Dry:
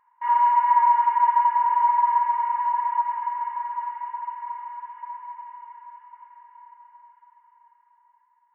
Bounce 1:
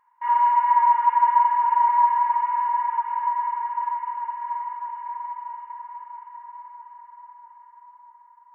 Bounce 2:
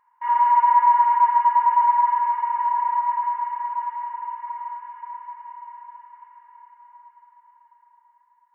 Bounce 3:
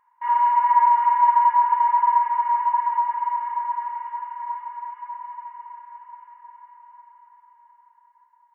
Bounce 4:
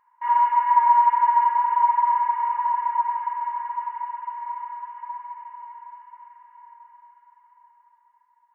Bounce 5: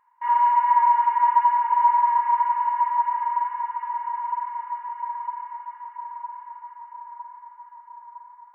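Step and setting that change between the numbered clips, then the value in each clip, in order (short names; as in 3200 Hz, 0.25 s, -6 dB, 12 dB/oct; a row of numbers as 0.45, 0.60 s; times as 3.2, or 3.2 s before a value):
narrowing echo, time: 643, 109, 354, 67, 958 ms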